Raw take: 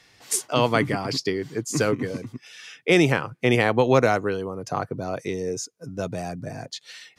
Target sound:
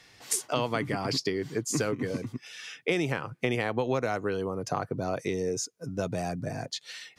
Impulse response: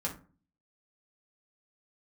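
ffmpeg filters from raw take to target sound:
-af "acompressor=threshold=-25dB:ratio=5"

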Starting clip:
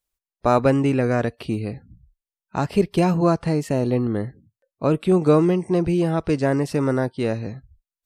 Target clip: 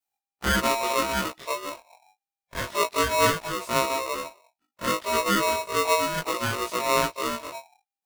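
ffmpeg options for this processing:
-af "afftfilt=real='re':imag='-im':win_size=2048:overlap=0.75,highshelf=f=7.4k:g=3,flanger=delay=15:depth=5.4:speed=1.3,aeval=exprs='val(0)*sgn(sin(2*PI*800*n/s))':c=same,volume=1.5dB"

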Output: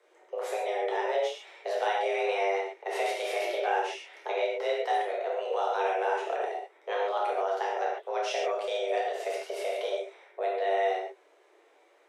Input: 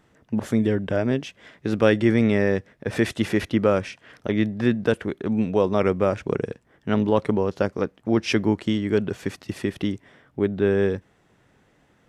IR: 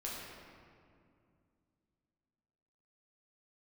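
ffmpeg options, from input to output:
-filter_complex "[0:a]afreqshift=290,flanger=delay=4.6:depth=4:regen=-36:speed=1.4:shape=triangular,acrossover=split=570|1200[a][b][c];[a]acompressor=threshold=-32dB:ratio=4[d];[b]acompressor=threshold=-36dB:ratio=4[e];[c]acompressor=threshold=-35dB:ratio=4[f];[d][e][f]amix=inputs=3:normalize=0[g];[1:a]atrim=start_sample=2205,atrim=end_sample=3969,asetrate=26019,aresample=44100[h];[g][h]afir=irnorm=-1:irlink=0"

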